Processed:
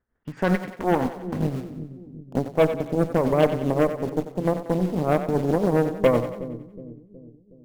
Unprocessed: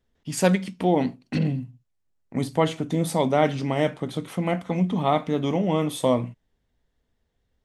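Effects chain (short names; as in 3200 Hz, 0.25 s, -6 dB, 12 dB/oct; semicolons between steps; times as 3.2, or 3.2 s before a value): low-pass sweep 1500 Hz -> 510 Hz, 0.49–2.98; in parallel at -9.5 dB: bit-crush 5-bit; on the sum: tremolo 7.6 Hz, depth 57%; added harmonics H 8 -19 dB, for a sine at -2.5 dBFS; on a send: split-band echo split 380 Hz, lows 0.368 s, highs 92 ms, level -10.5 dB; on the sum: gain -3 dB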